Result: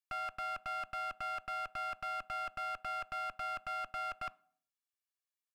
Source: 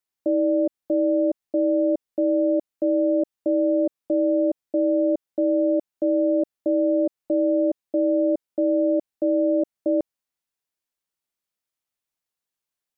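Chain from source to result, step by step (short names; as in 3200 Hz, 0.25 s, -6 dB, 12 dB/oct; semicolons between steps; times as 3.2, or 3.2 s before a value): HPF 430 Hz 24 dB/oct; comb 4.1 ms, depth 79%; one-sided clip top -41.5 dBFS, bottom -23 dBFS; on a send at -22 dB: reverb RT60 1.1 s, pre-delay 3 ms; on the sum: speed mistake 33 rpm record played at 78 rpm; gain -7.5 dB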